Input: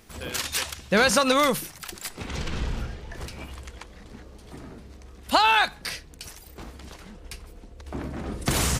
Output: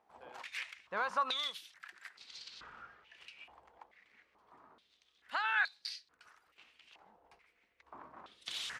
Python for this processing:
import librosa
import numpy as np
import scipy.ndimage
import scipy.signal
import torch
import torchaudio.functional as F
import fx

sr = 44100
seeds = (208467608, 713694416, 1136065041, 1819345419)

y = fx.filter_held_bandpass(x, sr, hz=2.3, low_hz=830.0, high_hz=4400.0)
y = y * librosa.db_to_amplitude(-4.5)